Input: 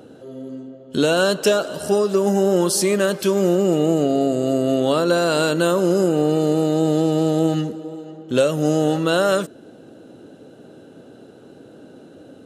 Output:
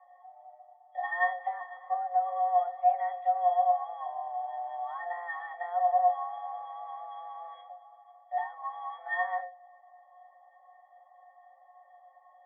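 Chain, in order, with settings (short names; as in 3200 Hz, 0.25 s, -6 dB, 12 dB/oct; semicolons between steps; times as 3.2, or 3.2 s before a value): octave resonator F#, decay 0.28 s; mistuned SSB +350 Hz 320–2200 Hz; gain +4 dB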